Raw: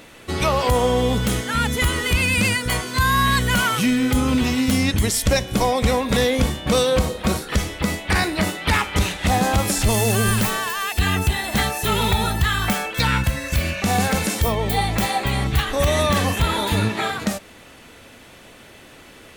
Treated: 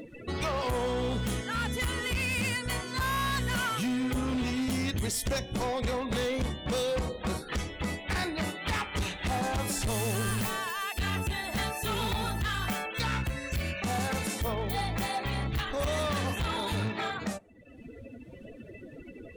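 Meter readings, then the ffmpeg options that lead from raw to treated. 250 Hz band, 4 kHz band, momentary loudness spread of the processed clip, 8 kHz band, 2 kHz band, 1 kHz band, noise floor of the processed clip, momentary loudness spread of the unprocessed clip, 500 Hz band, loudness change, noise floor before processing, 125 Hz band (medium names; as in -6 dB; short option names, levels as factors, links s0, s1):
-11.0 dB, -11.0 dB, 6 LU, -11.5 dB, -10.5 dB, -11.0 dB, -48 dBFS, 5 LU, -11.0 dB, -11.0 dB, -45 dBFS, -11.0 dB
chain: -af "afftdn=nr=33:nf=-37,acompressor=mode=upward:threshold=0.0891:ratio=2.5,asoftclip=type=hard:threshold=0.133,volume=0.355"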